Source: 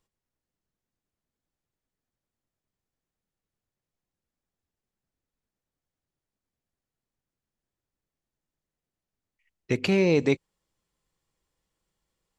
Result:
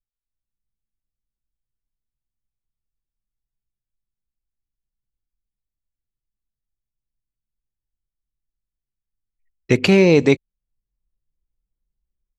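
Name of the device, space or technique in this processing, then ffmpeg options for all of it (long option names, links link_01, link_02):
voice memo with heavy noise removal: -af "anlmdn=0.000398,dynaudnorm=framelen=220:gausssize=3:maxgain=12.5dB"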